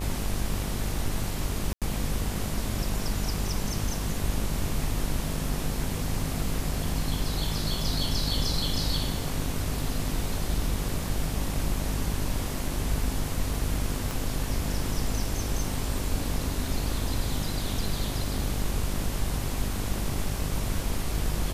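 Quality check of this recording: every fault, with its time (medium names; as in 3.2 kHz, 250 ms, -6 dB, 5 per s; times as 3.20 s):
buzz 50 Hz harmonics 24 -33 dBFS
1.73–1.82 s: dropout 87 ms
14.11 s: pop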